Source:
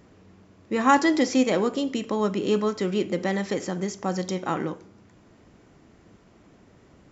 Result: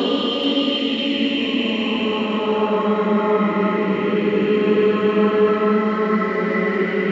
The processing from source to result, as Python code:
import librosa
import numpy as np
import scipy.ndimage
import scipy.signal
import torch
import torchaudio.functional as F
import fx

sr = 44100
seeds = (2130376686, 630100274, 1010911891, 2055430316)

p1 = fx.filter_sweep_lowpass(x, sr, from_hz=5500.0, to_hz=2000.0, start_s=0.97, end_s=2.4, q=3.8)
p2 = fx.paulstretch(p1, sr, seeds[0], factor=6.1, window_s=0.5, from_s=1.72)
p3 = fx.dmg_noise_band(p2, sr, seeds[1], low_hz=290.0, high_hz=3900.0, level_db=-60.0)
p4 = p3 + fx.echo_single(p3, sr, ms=435, db=-8.5, dry=0)
y = p4 * 10.0 ** (5.5 / 20.0)